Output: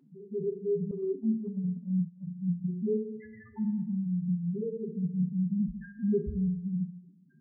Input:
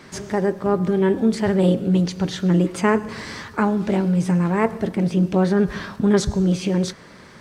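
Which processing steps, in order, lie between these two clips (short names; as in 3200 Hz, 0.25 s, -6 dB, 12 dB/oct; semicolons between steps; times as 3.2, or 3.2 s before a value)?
loudest bins only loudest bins 1; FDN reverb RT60 0.9 s, low-frequency decay 0.8×, high-frequency decay 1×, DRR 3.5 dB; 0.91–2.27 expander -22 dBFS; gain -4 dB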